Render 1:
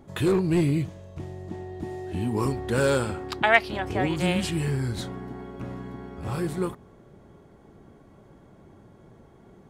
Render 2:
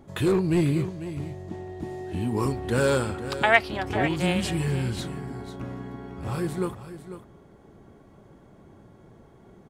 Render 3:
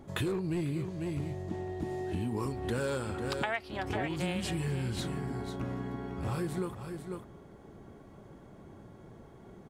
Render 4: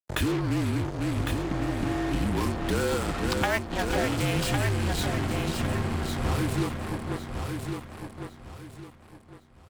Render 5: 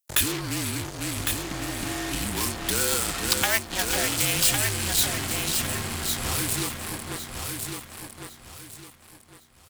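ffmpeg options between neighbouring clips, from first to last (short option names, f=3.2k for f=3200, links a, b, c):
-af "aecho=1:1:496:0.237"
-af "acompressor=threshold=-30dB:ratio=8"
-filter_complex "[0:a]acrusher=bits=5:mix=0:aa=0.5,afreqshift=-41,asplit=2[a][b];[b]aecho=0:1:1106|2212|3318|4424:0.531|0.159|0.0478|0.0143[c];[a][c]amix=inputs=2:normalize=0,volume=6dB"
-af "crystalizer=i=9:c=0,volume=-5.5dB"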